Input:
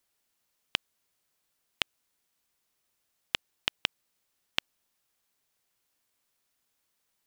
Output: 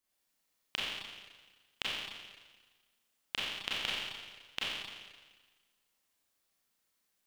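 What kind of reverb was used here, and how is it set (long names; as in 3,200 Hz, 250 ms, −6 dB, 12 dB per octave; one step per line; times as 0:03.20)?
four-comb reverb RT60 1.4 s, combs from 29 ms, DRR −7.5 dB
level −9.5 dB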